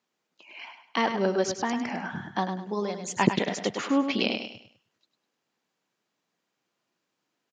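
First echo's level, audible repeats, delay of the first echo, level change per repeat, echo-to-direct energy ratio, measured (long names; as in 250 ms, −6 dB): −8.0 dB, 3, 102 ms, −9.5 dB, −7.5 dB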